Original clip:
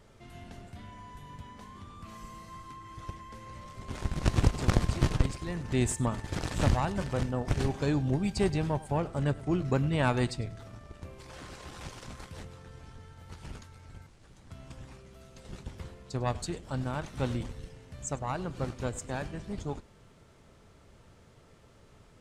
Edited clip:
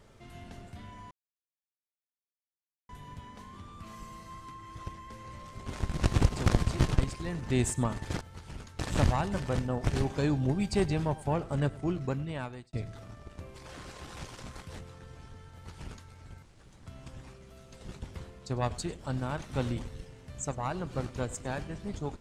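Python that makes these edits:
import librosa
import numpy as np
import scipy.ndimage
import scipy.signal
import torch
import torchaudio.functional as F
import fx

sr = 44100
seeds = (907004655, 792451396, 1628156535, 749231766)

y = fx.edit(x, sr, fx.insert_silence(at_s=1.11, length_s=1.78),
    fx.fade_out_span(start_s=9.26, length_s=1.11),
    fx.duplicate(start_s=13.16, length_s=0.58, to_s=6.43), tone=tone)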